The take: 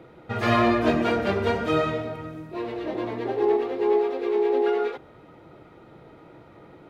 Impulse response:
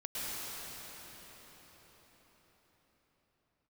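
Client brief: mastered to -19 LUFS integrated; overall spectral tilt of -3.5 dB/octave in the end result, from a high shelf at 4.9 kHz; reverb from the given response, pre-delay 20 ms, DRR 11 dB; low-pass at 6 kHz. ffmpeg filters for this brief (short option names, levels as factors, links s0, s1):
-filter_complex "[0:a]lowpass=6000,highshelf=f=4900:g=-9,asplit=2[s0][s1];[1:a]atrim=start_sample=2205,adelay=20[s2];[s1][s2]afir=irnorm=-1:irlink=0,volume=0.158[s3];[s0][s3]amix=inputs=2:normalize=0,volume=1.88"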